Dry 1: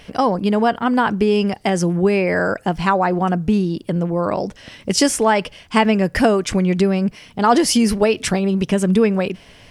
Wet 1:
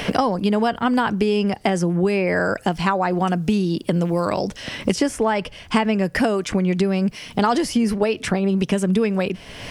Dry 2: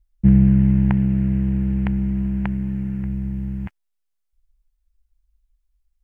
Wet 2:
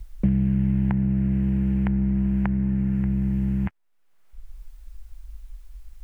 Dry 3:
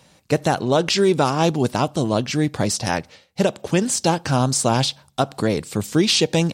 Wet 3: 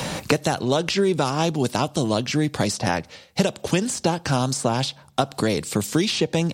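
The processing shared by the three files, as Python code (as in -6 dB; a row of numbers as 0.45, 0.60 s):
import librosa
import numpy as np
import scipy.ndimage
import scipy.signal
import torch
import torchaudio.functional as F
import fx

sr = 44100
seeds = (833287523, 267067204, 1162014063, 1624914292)

y = fx.band_squash(x, sr, depth_pct=100)
y = y * 10.0 ** (-3.5 / 20.0)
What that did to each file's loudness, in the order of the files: -3.0, -3.5, -2.5 LU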